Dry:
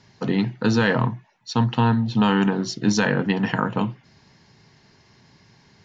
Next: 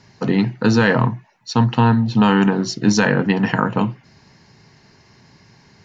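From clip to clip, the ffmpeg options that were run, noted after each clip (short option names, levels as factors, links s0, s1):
-af "equalizer=f=3400:t=o:w=0.27:g=-6,volume=1.68"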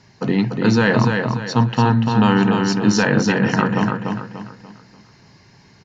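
-af "aecho=1:1:292|584|876|1168|1460:0.596|0.22|0.0815|0.0302|0.0112,volume=0.891"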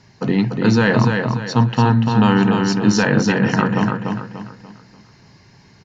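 -af "lowshelf=f=140:g=3"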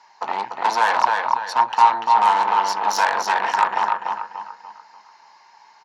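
-af "aeval=exprs='0.891*(cos(1*acos(clip(val(0)/0.891,-1,1)))-cos(1*PI/2))+0.316*(cos(5*acos(clip(val(0)/0.891,-1,1)))-cos(5*PI/2))+0.282*(cos(8*acos(clip(val(0)/0.891,-1,1)))-cos(8*PI/2))':c=same,highpass=f=900:t=q:w=6.9,volume=0.237"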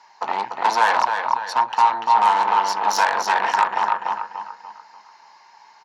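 -af "alimiter=limit=0.501:level=0:latency=1:release=361,volume=1.12"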